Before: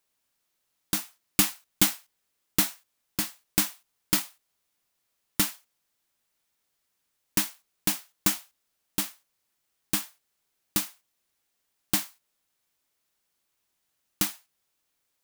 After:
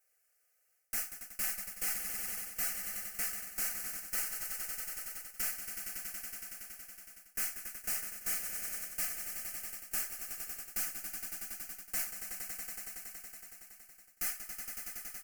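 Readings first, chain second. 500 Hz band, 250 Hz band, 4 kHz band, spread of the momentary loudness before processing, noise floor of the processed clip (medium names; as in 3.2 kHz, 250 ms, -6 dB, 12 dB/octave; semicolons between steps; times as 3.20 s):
-11.0 dB, -23.0 dB, -14.0 dB, 10 LU, -75 dBFS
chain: valve stage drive 27 dB, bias 0.7; bass shelf 350 Hz -8.5 dB; static phaser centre 980 Hz, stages 6; echo with a slow build-up 93 ms, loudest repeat 5, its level -16 dB; reverse; compression 6:1, threshold -41 dBFS, peak gain reduction 11 dB; reverse; comb 4 ms, depth 88%; trim +6 dB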